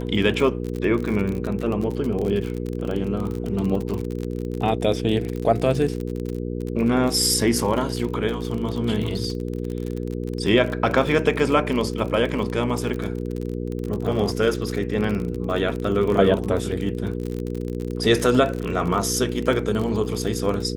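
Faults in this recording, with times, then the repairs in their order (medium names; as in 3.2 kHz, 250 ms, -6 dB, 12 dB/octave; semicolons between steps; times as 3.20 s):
crackle 41 per s -26 dBFS
hum 60 Hz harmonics 8 -28 dBFS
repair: de-click; de-hum 60 Hz, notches 8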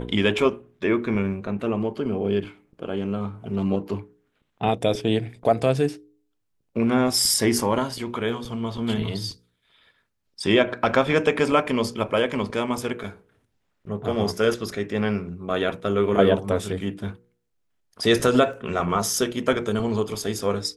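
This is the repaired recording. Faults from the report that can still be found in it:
nothing left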